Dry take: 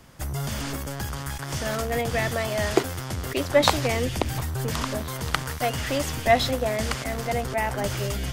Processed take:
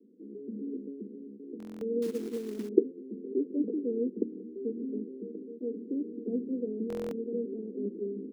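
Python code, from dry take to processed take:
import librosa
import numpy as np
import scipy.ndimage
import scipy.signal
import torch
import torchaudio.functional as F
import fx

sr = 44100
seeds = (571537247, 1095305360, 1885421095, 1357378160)

y = scipy.signal.sosfilt(scipy.signal.cheby1(5, 1.0, [200.0, 470.0], 'bandpass', fs=sr, output='sos'), x)
y = fx.quant_float(y, sr, bits=2, at=(2.02, 2.69))
y = fx.buffer_glitch(y, sr, at_s=(1.58, 6.88), block=1024, repeats=9)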